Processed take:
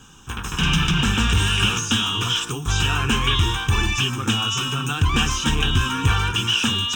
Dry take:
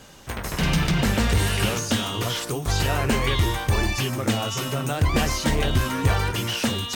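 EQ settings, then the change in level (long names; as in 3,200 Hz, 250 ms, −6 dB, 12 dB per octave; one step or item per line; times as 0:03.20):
phaser with its sweep stopped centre 3,000 Hz, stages 8
dynamic equaliser 2,600 Hz, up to +8 dB, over −44 dBFS, Q 0.7
+2.0 dB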